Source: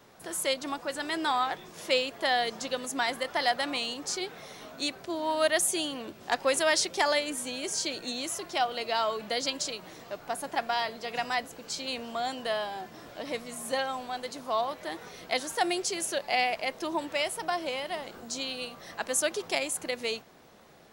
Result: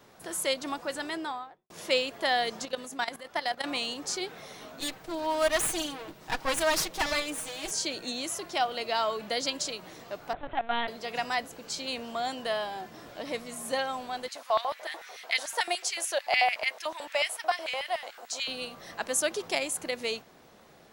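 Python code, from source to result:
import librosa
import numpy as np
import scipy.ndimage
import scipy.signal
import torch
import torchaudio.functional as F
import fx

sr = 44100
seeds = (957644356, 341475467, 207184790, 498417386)

y = fx.studio_fade_out(x, sr, start_s=0.91, length_s=0.79)
y = fx.level_steps(y, sr, step_db=14, at=(2.65, 3.64))
y = fx.lower_of_two(y, sr, delay_ms=6.3, at=(4.8, 7.71))
y = fx.lpc_vocoder(y, sr, seeds[0], excitation='pitch_kept', order=10, at=(10.33, 10.88))
y = fx.filter_lfo_highpass(y, sr, shape='square', hz=6.8, low_hz=680.0, high_hz=2000.0, q=1.8, at=(14.28, 18.48))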